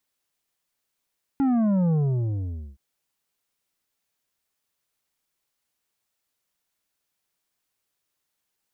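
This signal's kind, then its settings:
bass drop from 280 Hz, over 1.37 s, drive 8 dB, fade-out 0.85 s, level −19.5 dB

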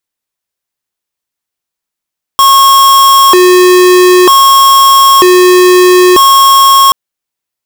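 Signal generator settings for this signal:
siren hi-lo 363–1,090 Hz 0.53 per second square −3.5 dBFS 4.53 s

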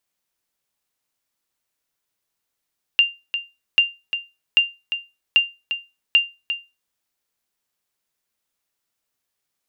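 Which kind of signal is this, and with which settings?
ping with an echo 2,790 Hz, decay 0.25 s, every 0.79 s, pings 5, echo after 0.35 s, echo −10 dB −6.5 dBFS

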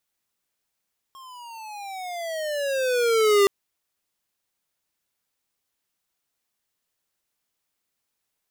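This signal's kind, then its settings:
pitch glide with a swell square, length 2.32 s, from 1,080 Hz, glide −17.5 semitones, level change +28 dB, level −16 dB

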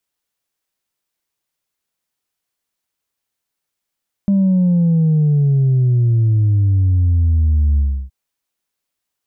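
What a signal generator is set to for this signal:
bass drop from 200 Hz, over 3.82 s, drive 1 dB, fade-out 0.32 s, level −11 dB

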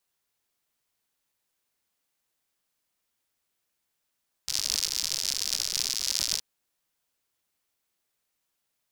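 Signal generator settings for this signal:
rain-like ticks over hiss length 1.92 s, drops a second 100, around 5,100 Hz, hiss −28 dB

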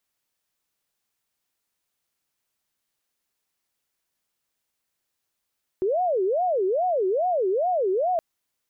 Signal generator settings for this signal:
siren wail 369–737 Hz 2.4 per second sine −20 dBFS 2.37 s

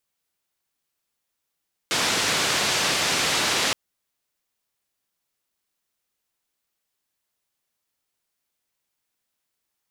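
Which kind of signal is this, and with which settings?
band-limited noise 110–5,400 Hz, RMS −23 dBFS 1.82 s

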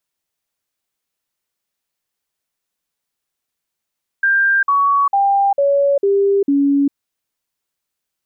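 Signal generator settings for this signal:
stepped sweep 1,590 Hz down, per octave 2, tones 6, 0.40 s, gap 0.05 s −11 dBFS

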